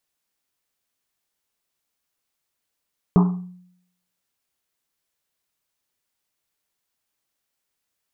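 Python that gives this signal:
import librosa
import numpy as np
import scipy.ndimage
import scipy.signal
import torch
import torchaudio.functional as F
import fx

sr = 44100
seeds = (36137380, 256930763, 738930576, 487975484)

y = fx.risset_drum(sr, seeds[0], length_s=1.1, hz=180.0, decay_s=0.73, noise_hz=950.0, noise_width_hz=500.0, noise_pct=15)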